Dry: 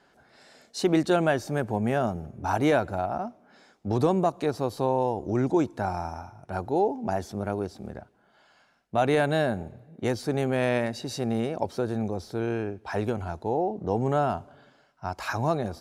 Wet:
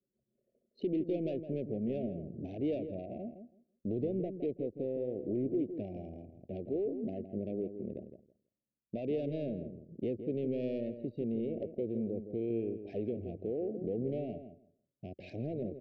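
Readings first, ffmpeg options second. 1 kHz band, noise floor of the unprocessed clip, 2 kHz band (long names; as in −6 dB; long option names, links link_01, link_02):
−27.0 dB, −63 dBFS, −27.0 dB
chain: -filter_complex "[0:a]highpass=270,lowpass=2000,aemphasis=mode=reproduction:type=bsi,acompressor=threshold=-35dB:ratio=2,equalizer=frequency=880:width_type=o:width=0.42:gain=-11,asoftclip=type=tanh:threshold=-27dB,anlmdn=0.0398,asuperstop=centerf=1200:order=8:qfactor=0.65,asplit=2[link_01][link_02];[link_02]adelay=164,lowpass=frequency=1500:poles=1,volume=-9dB,asplit=2[link_03][link_04];[link_04]adelay=164,lowpass=frequency=1500:poles=1,volume=0.17,asplit=2[link_05][link_06];[link_06]adelay=164,lowpass=frequency=1500:poles=1,volume=0.17[link_07];[link_03][link_05][link_07]amix=inputs=3:normalize=0[link_08];[link_01][link_08]amix=inputs=2:normalize=0,volume=1dB"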